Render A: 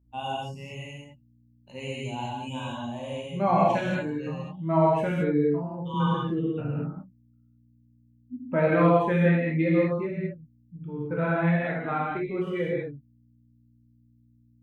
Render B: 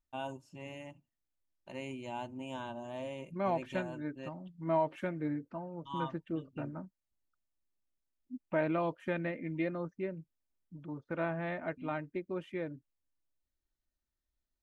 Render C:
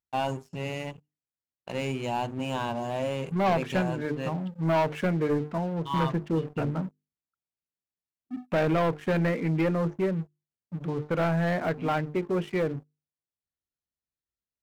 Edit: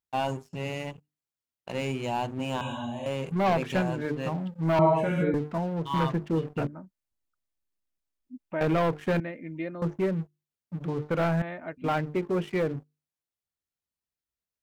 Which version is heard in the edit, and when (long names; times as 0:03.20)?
C
0:02.61–0:03.06: punch in from A
0:04.79–0:05.34: punch in from A
0:06.67–0:08.61: punch in from B
0:09.20–0:09.82: punch in from B
0:11.42–0:11.84: punch in from B